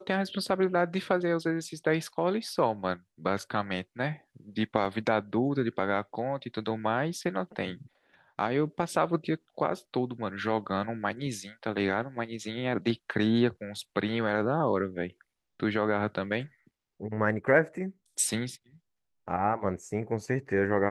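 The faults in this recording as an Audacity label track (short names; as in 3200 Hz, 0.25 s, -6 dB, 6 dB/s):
4.850000	4.860000	gap 5.6 ms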